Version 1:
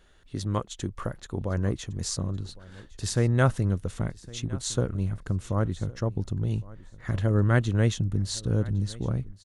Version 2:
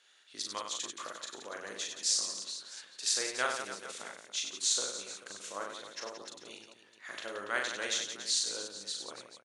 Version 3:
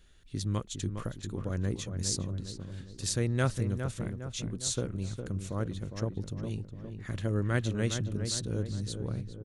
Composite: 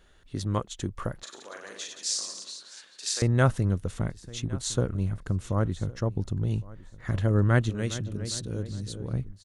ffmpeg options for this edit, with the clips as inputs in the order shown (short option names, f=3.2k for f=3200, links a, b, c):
-filter_complex "[0:a]asplit=3[a][b][c];[a]atrim=end=1.232[d];[1:a]atrim=start=1.228:end=3.222[e];[b]atrim=start=3.218:end=7.702[f];[2:a]atrim=start=7.698:end=9.132[g];[c]atrim=start=9.128[h];[d][e]acrossfade=d=0.004:c1=hsin:c2=hsin[i];[i][f]acrossfade=d=0.004:c1=hsin:c2=hsin[j];[j][g]acrossfade=d=0.004:c1=hsin:c2=hsin[k];[k][h]acrossfade=d=0.004:c1=hsin:c2=hsin"